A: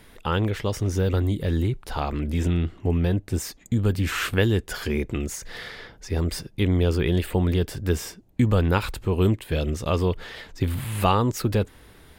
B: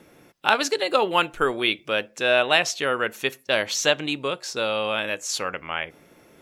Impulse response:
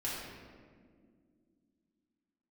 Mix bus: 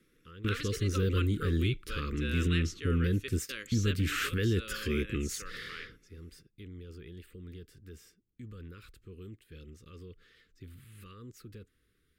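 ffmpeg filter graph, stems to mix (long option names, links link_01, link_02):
-filter_complex "[0:a]alimiter=limit=-15dB:level=0:latency=1:release=17,volume=-5.5dB[link_01];[1:a]volume=-16.5dB,asplit=2[link_02][link_03];[link_03]apad=whole_len=537569[link_04];[link_01][link_04]sidechaingate=range=-18dB:threshold=-59dB:ratio=16:detection=peak[link_05];[link_05][link_02]amix=inputs=2:normalize=0,asuperstop=centerf=760:order=8:qfactor=1.1"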